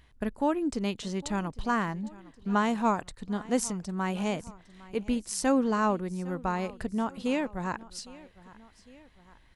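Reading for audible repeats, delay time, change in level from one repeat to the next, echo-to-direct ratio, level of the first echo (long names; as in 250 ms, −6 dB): 2, 807 ms, −4.5 dB, −19.0 dB, −20.5 dB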